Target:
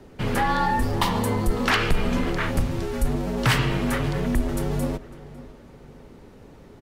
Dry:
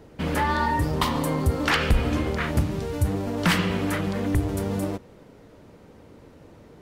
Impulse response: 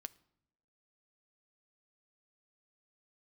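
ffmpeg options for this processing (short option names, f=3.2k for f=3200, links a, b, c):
-filter_complex "[0:a]afreqshift=-51,asplit=2[a][b];[b]adelay=552,lowpass=f=3.6k:p=1,volume=-18dB,asplit=2[c][d];[d]adelay=552,lowpass=f=3.6k:p=1,volume=0.38,asplit=2[e][f];[f]adelay=552,lowpass=f=3.6k:p=1,volume=0.38[g];[a][c][e][g]amix=inputs=4:normalize=0,acontrast=87,volume=-5.5dB"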